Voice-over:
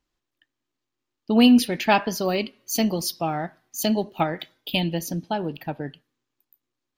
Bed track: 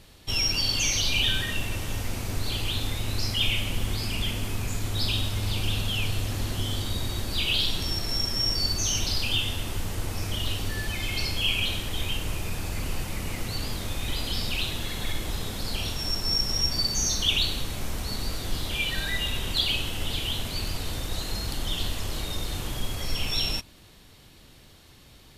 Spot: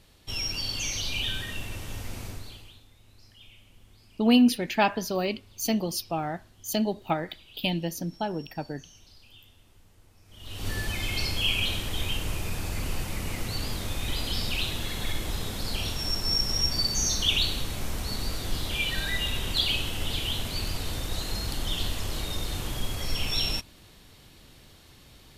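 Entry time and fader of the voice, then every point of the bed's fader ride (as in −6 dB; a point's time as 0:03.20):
2.90 s, −4.0 dB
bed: 0:02.26 −6 dB
0:02.86 −27.5 dB
0:10.24 −27.5 dB
0:10.68 −0.5 dB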